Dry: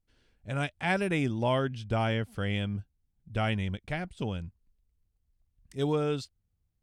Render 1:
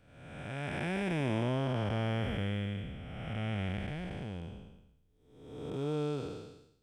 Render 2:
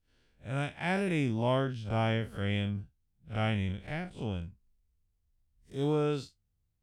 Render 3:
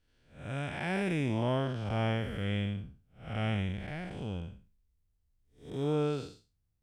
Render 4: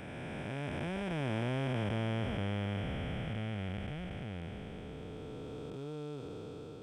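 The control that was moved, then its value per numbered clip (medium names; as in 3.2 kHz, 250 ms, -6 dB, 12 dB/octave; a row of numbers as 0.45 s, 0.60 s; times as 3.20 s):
spectral blur, width: 555 ms, 92 ms, 227 ms, 1770 ms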